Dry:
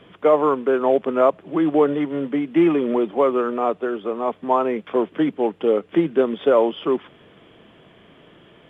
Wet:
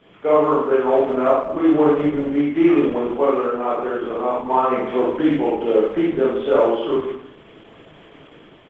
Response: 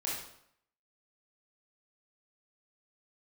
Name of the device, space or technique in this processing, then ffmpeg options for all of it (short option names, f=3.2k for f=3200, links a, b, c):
speakerphone in a meeting room: -filter_complex "[0:a]asplit=3[a][b][c];[a]afade=t=out:st=4.72:d=0.02[d];[b]highshelf=f=2.2k:g=2.5,afade=t=in:st=4.72:d=0.02,afade=t=out:st=5.86:d=0.02[e];[c]afade=t=in:st=5.86:d=0.02[f];[d][e][f]amix=inputs=3:normalize=0,aecho=1:1:40|79:0.251|0.211[g];[1:a]atrim=start_sample=2205[h];[g][h]afir=irnorm=-1:irlink=0,asplit=2[i][j];[j]adelay=140,highpass=300,lowpass=3.4k,asoftclip=type=hard:threshold=-10dB,volume=-22dB[k];[i][k]amix=inputs=2:normalize=0,dynaudnorm=f=160:g=7:m=5.5dB,volume=-3dB" -ar 48000 -c:a libopus -b:a 12k